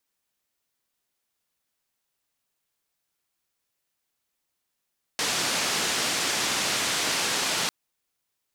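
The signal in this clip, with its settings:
band-limited noise 140–6,500 Hz, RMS −26.5 dBFS 2.50 s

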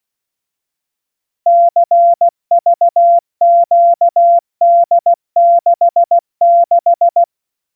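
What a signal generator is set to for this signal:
Morse code "CVQD66" 16 words per minute 687 Hz −4.5 dBFS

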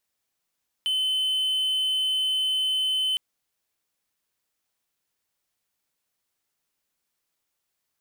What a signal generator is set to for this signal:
tone triangle 3,050 Hz −20 dBFS 2.31 s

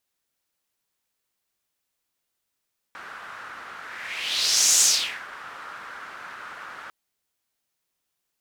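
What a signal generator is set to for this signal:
pass-by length 3.95 s, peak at 0:01.86, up 1.07 s, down 0.47 s, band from 1,400 Hz, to 6,800 Hz, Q 3.2, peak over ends 22.5 dB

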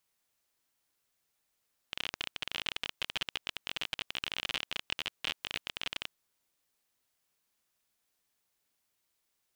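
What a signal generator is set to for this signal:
Geiger counter clicks 34 per second −17 dBFS 4.23 s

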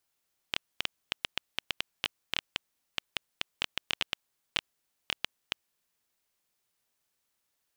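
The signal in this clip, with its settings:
Geiger counter clicks 6.4 per second −10 dBFS 5.24 s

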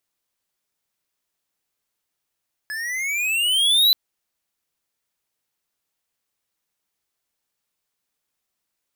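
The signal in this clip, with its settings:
pitch glide with a swell square, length 1.23 s, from 1,700 Hz, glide +15 semitones, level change +15 dB, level −14 dB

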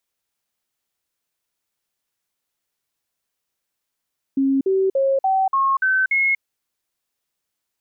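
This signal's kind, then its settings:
stepped sweep 271 Hz up, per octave 2, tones 7, 0.24 s, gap 0.05 s −15 dBFS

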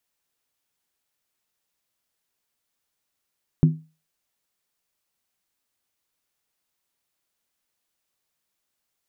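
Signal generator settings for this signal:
struck skin, lowest mode 158 Hz, decay 0.31 s, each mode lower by 9 dB, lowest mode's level −9 dB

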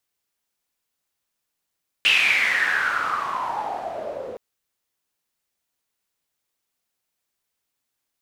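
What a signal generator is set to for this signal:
filter sweep on noise pink, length 2.32 s bandpass, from 2,800 Hz, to 480 Hz, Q 8.9, exponential, gain ramp −16 dB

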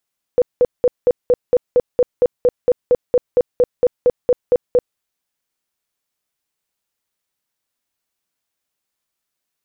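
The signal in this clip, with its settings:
tone bursts 493 Hz, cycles 19, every 0.23 s, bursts 20, −8.5 dBFS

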